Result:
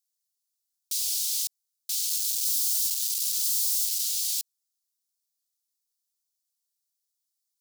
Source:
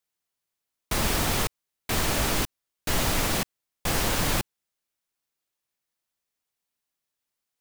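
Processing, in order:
0:02.09–0:04.02: sign of each sample alone
inverse Chebyshev high-pass filter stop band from 1,300 Hz, stop band 60 dB
level +3.5 dB

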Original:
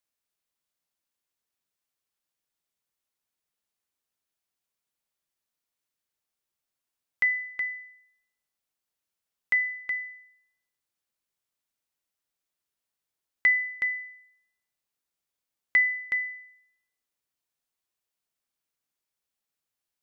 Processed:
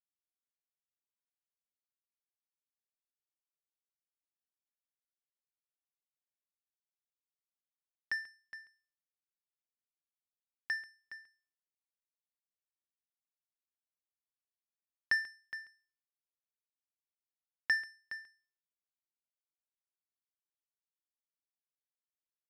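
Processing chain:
power curve on the samples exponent 2
speed change −11%
single-tap delay 138 ms −19 dB
level −6.5 dB

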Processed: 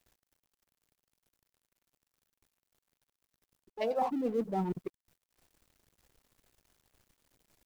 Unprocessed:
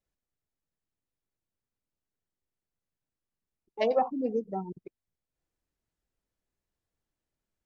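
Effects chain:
mu-law and A-law mismatch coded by mu
reversed playback
downward compressor 8 to 1, threshold −33 dBFS, peak gain reduction 13.5 dB
reversed playback
level +4.5 dB

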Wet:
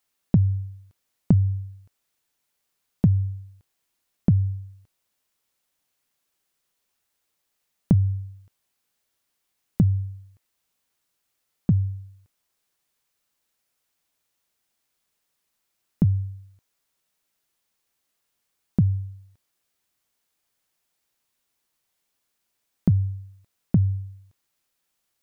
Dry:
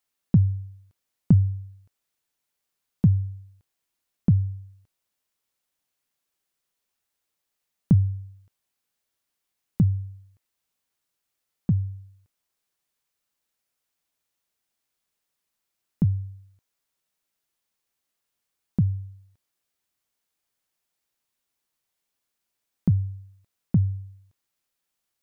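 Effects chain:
downward compressor 3 to 1, threshold −20 dBFS, peak gain reduction 6.5 dB
level +4.5 dB

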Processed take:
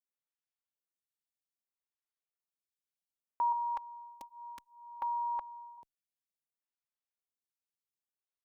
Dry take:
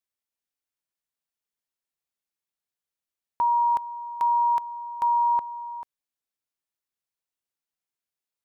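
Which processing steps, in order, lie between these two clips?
0:03.52–0:05.78: comb filter 3.6 ms, depth 84%
phaser with staggered stages 0.62 Hz
level −7.5 dB

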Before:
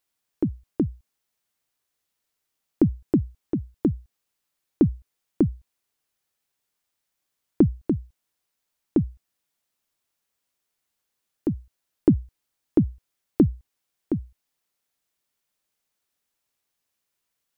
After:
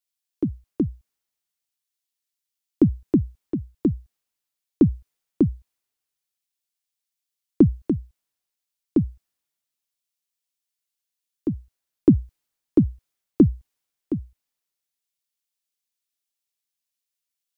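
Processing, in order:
multiband upward and downward expander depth 40%

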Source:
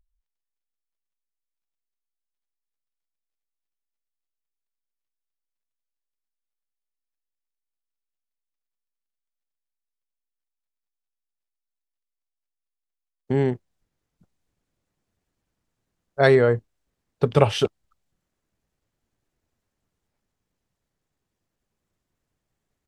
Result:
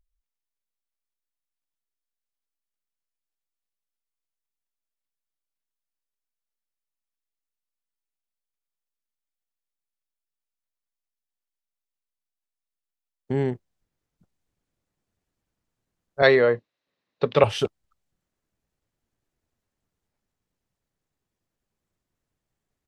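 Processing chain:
0:16.22–0:17.44: loudspeaker in its box 180–5,900 Hz, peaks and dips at 550 Hz +6 dB, 1,100 Hz +5 dB, 1,900 Hz +7 dB, 2,600 Hz +6 dB, 3,900 Hz +10 dB
level −3 dB

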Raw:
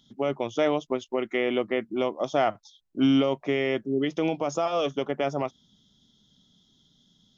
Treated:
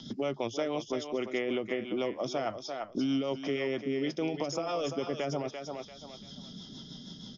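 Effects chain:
parametric band 5,100 Hz +13 dB 0.28 octaves
in parallel at −2 dB: compressor whose output falls as the input rises −32 dBFS, ratio −1
on the sum: rotating-speaker cabinet horn 6.3 Hz
on a send: feedback echo with a high-pass in the loop 342 ms, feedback 18%, high-pass 420 Hz, level −8 dB
on the sum: downsampling to 16,000 Hz
multiband upward and downward compressor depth 70%
level −7.5 dB

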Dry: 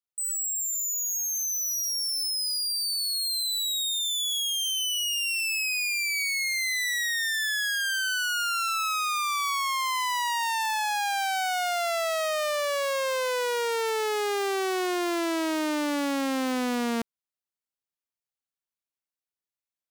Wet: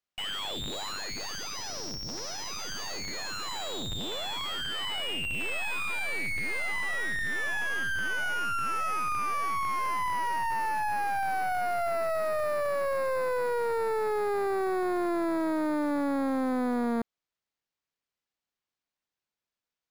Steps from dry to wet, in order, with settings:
sample-rate reduction 11,000 Hz, jitter 0%
slew-rate limiting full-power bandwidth 63 Hz

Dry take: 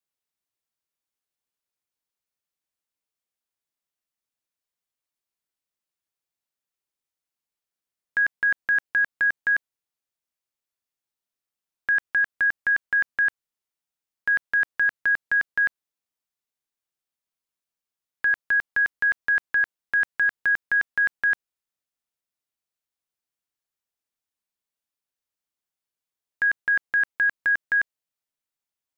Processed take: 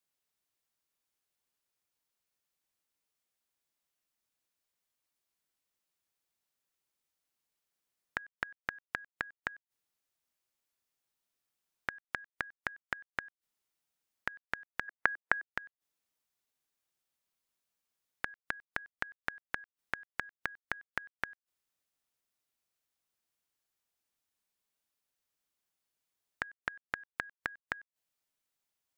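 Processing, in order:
0:14.88–0:15.49: flat-topped bell 840 Hz +11 dB 3 octaves
gate with flip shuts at −20 dBFS, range −33 dB
level +2.5 dB

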